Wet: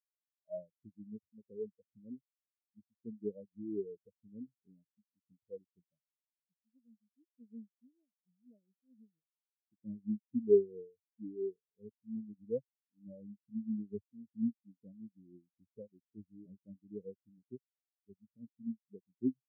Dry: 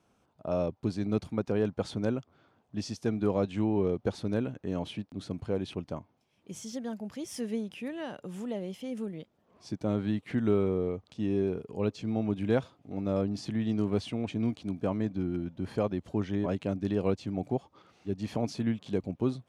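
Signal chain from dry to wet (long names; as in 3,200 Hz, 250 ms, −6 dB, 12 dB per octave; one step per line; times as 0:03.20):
rotating-speaker cabinet horn 5 Hz, later 1.1 Hz, at 0:16.16
every bin expanded away from the loudest bin 4 to 1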